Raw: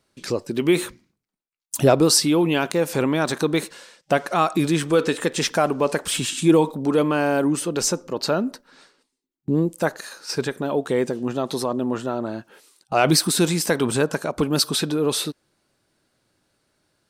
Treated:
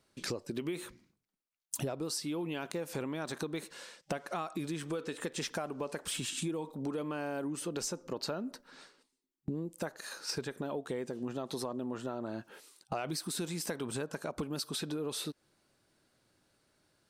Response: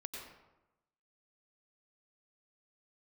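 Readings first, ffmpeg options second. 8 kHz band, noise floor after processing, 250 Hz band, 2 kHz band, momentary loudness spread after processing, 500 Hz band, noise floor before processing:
−15.0 dB, −82 dBFS, −16.5 dB, −16.0 dB, 6 LU, −17.0 dB, −79 dBFS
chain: -af "acompressor=threshold=-30dB:ratio=12,volume=-3.5dB"

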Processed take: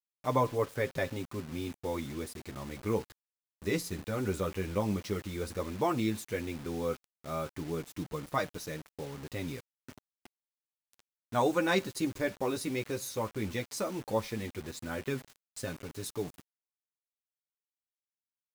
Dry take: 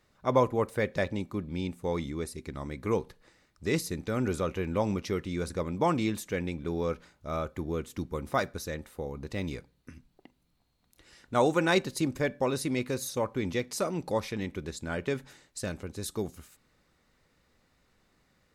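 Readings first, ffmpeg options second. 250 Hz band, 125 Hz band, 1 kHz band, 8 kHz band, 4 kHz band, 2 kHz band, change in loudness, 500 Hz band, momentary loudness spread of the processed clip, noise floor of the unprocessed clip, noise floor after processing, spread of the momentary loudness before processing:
−3.0 dB, −3.0 dB, −2.5 dB, −2.5 dB, −2.5 dB, −3.0 dB, −3.0 dB, −3.5 dB, 11 LU, −70 dBFS, below −85 dBFS, 11 LU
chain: -af "flanger=delay=6.4:depth=4.1:regen=-8:speed=0.12:shape=triangular,acrusher=bits=7:mix=0:aa=0.000001"

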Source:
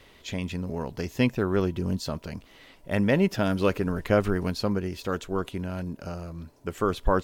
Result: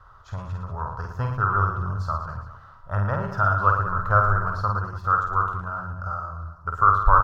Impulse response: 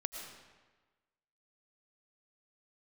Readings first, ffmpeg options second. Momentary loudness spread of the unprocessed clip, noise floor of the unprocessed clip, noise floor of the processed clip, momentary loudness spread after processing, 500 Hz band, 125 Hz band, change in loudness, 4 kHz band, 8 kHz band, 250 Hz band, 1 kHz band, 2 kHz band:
13 LU, −55 dBFS, −49 dBFS, 14 LU, −6.5 dB, +5.0 dB, +4.0 dB, below −10 dB, below −10 dB, −11.5 dB, +13.5 dB, +6.5 dB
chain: -filter_complex "[0:a]firequalizer=gain_entry='entry(110,0);entry(210,-23);entry(290,-24);entry(640,-9);entry(1300,12);entry(2100,-28);entry(5400,-18);entry(8300,-26)':delay=0.05:min_phase=1,asplit=2[link_01][link_02];[link_02]aecho=0:1:50|112.5|190.6|288.3|410.4:0.631|0.398|0.251|0.158|0.1[link_03];[link_01][link_03]amix=inputs=2:normalize=0,volume=5.5dB"

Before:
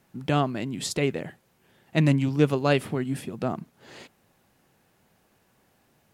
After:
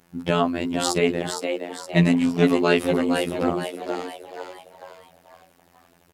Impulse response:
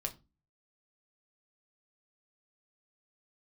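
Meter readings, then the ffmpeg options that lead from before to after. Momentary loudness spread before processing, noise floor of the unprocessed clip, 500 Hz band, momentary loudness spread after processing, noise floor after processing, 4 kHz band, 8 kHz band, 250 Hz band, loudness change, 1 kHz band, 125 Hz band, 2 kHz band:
10 LU, −66 dBFS, +5.5 dB, 15 LU, −59 dBFS, +6.0 dB, +5.5 dB, +5.0 dB, +3.5 dB, +5.0 dB, −1.0 dB, +5.5 dB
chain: -filter_complex "[0:a]afftfilt=real='hypot(re,im)*cos(PI*b)':imag='0':win_size=2048:overlap=0.75,acontrast=26,asplit=6[link_01][link_02][link_03][link_04][link_05][link_06];[link_02]adelay=464,afreqshift=98,volume=-6dB[link_07];[link_03]adelay=928,afreqshift=196,volume=-13.1dB[link_08];[link_04]adelay=1392,afreqshift=294,volume=-20.3dB[link_09];[link_05]adelay=1856,afreqshift=392,volume=-27.4dB[link_10];[link_06]adelay=2320,afreqshift=490,volume=-34.5dB[link_11];[link_01][link_07][link_08][link_09][link_10][link_11]amix=inputs=6:normalize=0,volume=3dB"

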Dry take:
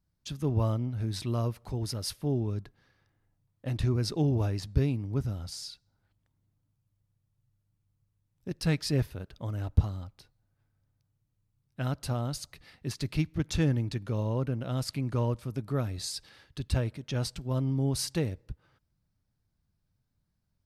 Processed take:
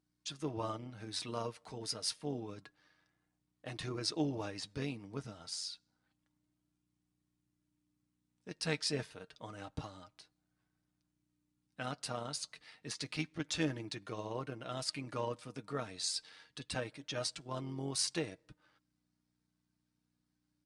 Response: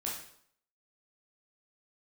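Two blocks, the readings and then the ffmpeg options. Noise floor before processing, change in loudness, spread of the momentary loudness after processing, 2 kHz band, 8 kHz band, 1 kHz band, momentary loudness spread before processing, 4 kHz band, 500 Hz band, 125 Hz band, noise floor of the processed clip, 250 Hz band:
−78 dBFS, −8.5 dB, 14 LU, −1.0 dB, −0.5 dB, −2.5 dB, 13 LU, −0.5 dB, −6.0 dB, −16.5 dB, −84 dBFS, −9.5 dB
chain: -af "aeval=exprs='val(0)+0.000631*(sin(2*PI*60*n/s)+sin(2*PI*2*60*n/s)/2+sin(2*PI*3*60*n/s)/3+sin(2*PI*4*60*n/s)/4+sin(2*PI*5*60*n/s)/5)':channel_layout=same,tremolo=f=92:d=0.462,highpass=frequency=760:poles=1,flanger=delay=2.7:depth=1.8:regen=67:speed=0.28:shape=sinusoidal,aecho=1:1:6.5:0.4,aresample=22050,aresample=44100,volume=5.5dB"

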